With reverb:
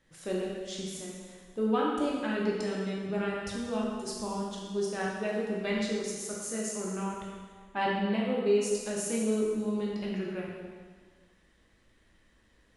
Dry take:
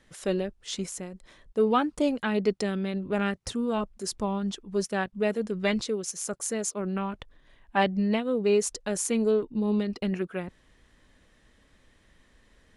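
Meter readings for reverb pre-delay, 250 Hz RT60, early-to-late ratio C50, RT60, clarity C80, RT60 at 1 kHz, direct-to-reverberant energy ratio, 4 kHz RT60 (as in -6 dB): 6 ms, 1.6 s, 0.0 dB, 1.6 s, 2.0 dB, 1.6 s, -4.0 dB, 1.5 s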